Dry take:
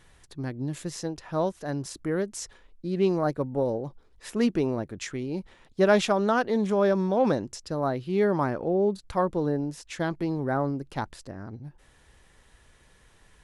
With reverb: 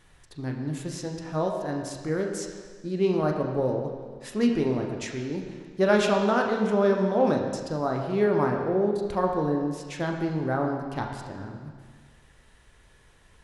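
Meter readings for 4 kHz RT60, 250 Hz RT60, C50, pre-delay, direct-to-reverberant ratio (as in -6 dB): 1.6 s, 1.7 s, 4.5 dB, 22 ms, 1.5 dB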